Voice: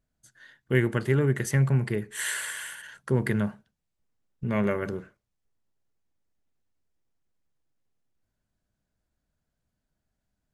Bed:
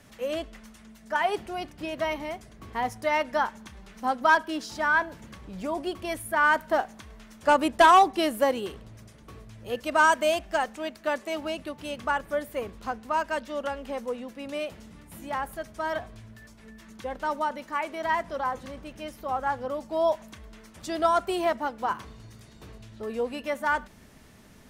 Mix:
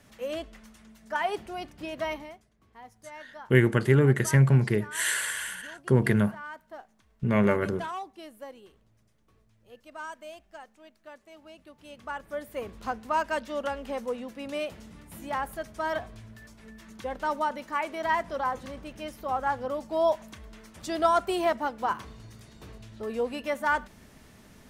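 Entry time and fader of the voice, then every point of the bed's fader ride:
2.80 s, +3.0 dB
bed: 2.14 s -3 dB
2.50 s -19.5 dB
11.34 s -19.5 dB
12.83 s 0 dB

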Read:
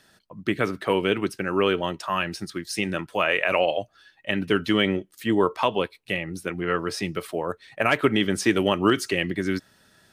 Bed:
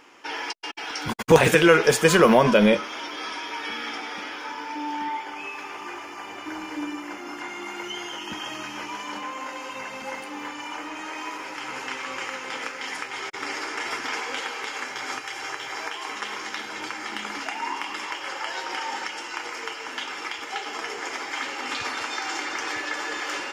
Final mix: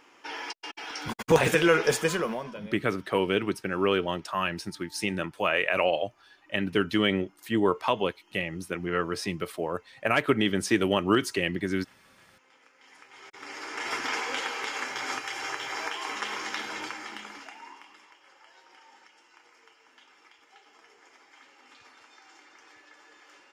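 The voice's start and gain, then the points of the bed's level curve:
2.25 s, -3.0 dB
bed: 1.96 s -5.5 dB
2.74 s -28.5 dB
12.63 s -28.5 dB
13.95 s -1 dB
16.72 s -1 dB
18.15 s -25 dB

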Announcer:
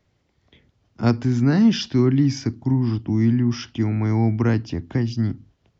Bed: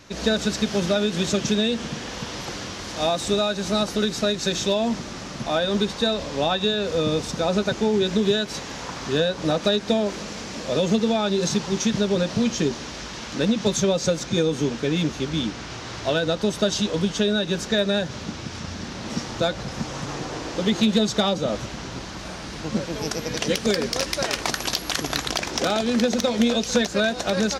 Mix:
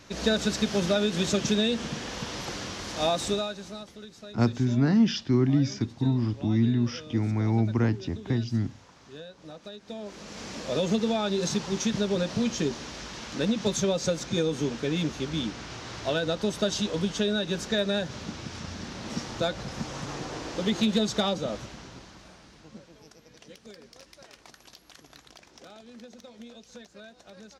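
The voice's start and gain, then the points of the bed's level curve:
3.35 s, -5.0 dB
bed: 3.24 s -3 dB
3.91 s -22 dB
9.77 s -22 dB
10.45 s -5 dB
21.32 s -5 dB
23.15 s -26 dB

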